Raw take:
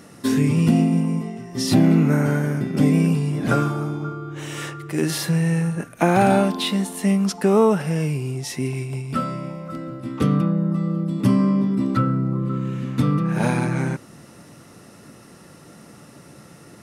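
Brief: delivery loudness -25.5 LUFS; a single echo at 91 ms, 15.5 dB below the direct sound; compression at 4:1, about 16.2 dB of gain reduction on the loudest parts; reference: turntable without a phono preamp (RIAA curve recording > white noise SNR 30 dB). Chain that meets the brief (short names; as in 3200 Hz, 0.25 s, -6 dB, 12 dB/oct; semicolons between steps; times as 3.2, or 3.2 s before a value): compressor 4:1, threshold -32 dBFS; RIAA curve recording; echo 91 ms -15.5 dB; white noise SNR 30 dB; gain +8.5 dB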